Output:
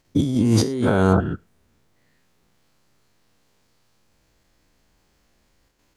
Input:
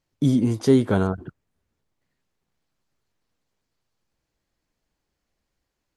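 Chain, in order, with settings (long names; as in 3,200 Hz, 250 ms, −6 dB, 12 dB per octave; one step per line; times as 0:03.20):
every bin's largest magnitude spread in time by 120 ms
in parallel at +1 dB: output level in coarse steps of 15 dB
on the sum: convolution reverb, pre-delay 3 ms, DRR 19 dB
compressor whose output falls as the input rises −18 dBFS, ratio −1
level −1 dB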